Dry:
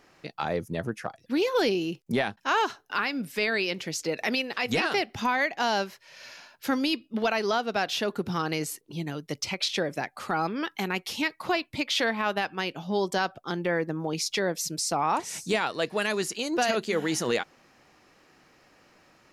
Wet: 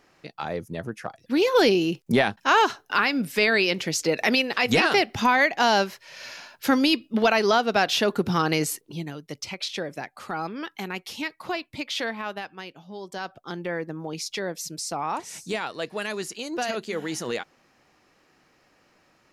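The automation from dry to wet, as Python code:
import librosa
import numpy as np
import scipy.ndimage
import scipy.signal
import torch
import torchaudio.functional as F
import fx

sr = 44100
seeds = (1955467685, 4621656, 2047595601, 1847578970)

y = fx.gain(x, sr, db=fx.line((0.9, -1.5), (1.57, 6.0), (8.73, 6.0), (9.17, -3.0), (12.06, -3.0), (12.99, -12.0), (13.36, -3.0)))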